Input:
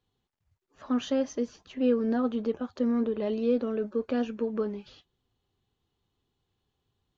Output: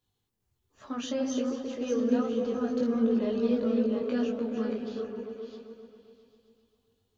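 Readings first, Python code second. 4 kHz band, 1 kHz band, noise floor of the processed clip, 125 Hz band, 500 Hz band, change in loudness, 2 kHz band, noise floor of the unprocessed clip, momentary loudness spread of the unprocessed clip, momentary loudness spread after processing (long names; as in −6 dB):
+1.0 dB, −1.5 dB, −79 dBFS, can't be measured, −0.5 dB, −0.5 dB, −0.5 dB, −81 dBFS, 7 LU, 13 LU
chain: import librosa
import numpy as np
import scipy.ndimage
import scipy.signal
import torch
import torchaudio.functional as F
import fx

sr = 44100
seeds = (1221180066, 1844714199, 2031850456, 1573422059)

y = fx.reverse_delay(x, sr, ms=401, wet_db=-5.5)
y = fx.high_shelf(y, sr, hz=5200.0, db=12.0)
y = fx.echo_opening(y, sr, ms=132, hz=400, octaves=1, feedback_pct=70, wet_db=-3)
y = fx.detune_double(y, sr, cents=10)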